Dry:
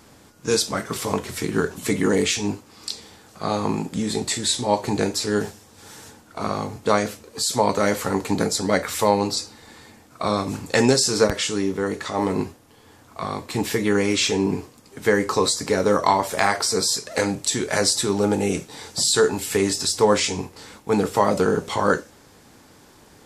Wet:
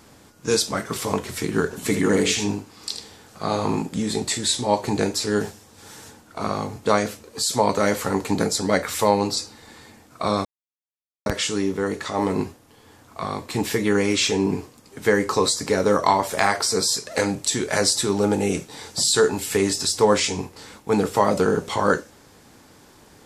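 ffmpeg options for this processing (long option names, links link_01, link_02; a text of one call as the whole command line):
ffmpeg -i in.wav -filter_complex "[0:a]asettb=1/sr,asplit=3[link_01][link_02][link_03];[link_01]atrim=end=1.654[link_04];[link_02]atrim=start=1.65:end=3.82,asetpts=PTS-STARTPTS,afade=type=in:duration=0.004:curve=qsin,afade=type=out:start_time=2.166:duration=0.004:curve=qsin,aecho=1:1:79:0.422,atrim=end_sample=95697[link_05];[link_03]atrim=start=3.816[link_06];[link_04][link_05]acrossfade=duration=0.004:curve1=hsin:curve2=qsin[link_07];[link_07][link_06]acrossfade=duration=0.004:curve1=qsin:curve2=hsin,asplit=3[link_08][link_09][link_10];[link_08]atrim=end=10.45,asetpts=PTS-STARTPTS,afade=type=out:start_time=10.446:duration=0.004:curve=hsin[link_11];[link_09]atrim=start=10.45:end=11.26,asetpts=PTS-STARTPTS,volume=0[link_12];[link_10]atrim=start=11.26,asetpts=PTS-STARTPTS,afade=type=in:duration=0.004:curve=hsin[link_13];[link_11][link_12][link_13]concat=n=3:v=0:a=1" out.wav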